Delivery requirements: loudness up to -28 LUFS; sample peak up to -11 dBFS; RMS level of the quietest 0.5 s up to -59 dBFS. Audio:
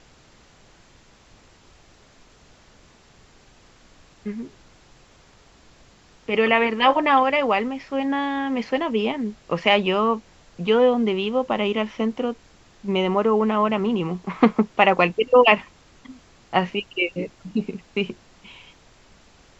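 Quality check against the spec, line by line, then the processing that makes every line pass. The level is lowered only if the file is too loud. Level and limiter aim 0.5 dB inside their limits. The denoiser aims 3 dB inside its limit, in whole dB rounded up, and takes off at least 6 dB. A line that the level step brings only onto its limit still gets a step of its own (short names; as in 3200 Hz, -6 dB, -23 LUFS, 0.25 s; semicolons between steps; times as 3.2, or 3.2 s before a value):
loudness -21.5 LUFS: fail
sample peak -2.0 dBFS: fail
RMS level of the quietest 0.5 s -53 dBFS: fail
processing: gain -7 dB; limiter -11.5 dBFS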